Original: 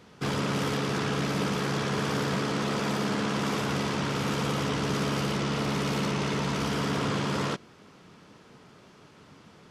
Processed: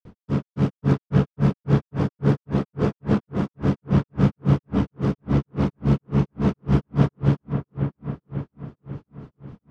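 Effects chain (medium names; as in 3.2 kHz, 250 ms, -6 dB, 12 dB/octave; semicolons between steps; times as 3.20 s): tilt EQ -4.5 dB/octave; granulator 151 ms, grains 3.6 per s, pitch spread up and down by 0 st; on a send: feedback echo behind a low-pass 543 ms, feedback 51%, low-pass 2.2 kHz, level -5 dB; on the sum: random flutter of the level, depth 50%; trim +5 dB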